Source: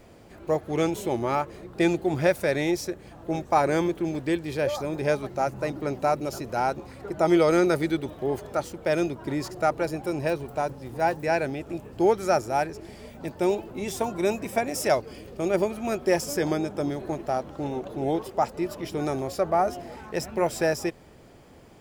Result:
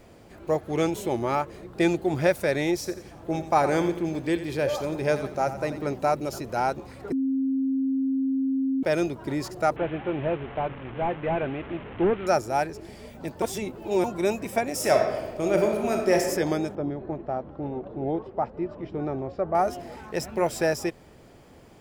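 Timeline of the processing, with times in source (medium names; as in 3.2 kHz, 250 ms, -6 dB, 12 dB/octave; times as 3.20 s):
2.77–5.94 s: feedback delay 87 ms, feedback 42%, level -12 dB
7.12–8.83 s: bleep 267 Hz -22 dBFS
9.76–12.27 s: one-bit delta coder 16 kbps, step -34 dBFS
13.42–14.04 s: reverse
14.74–16.15 s: reverb throw, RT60 1.2 s, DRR 2 dB
16.75–19.55 s: tape spacing loss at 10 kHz 43 dB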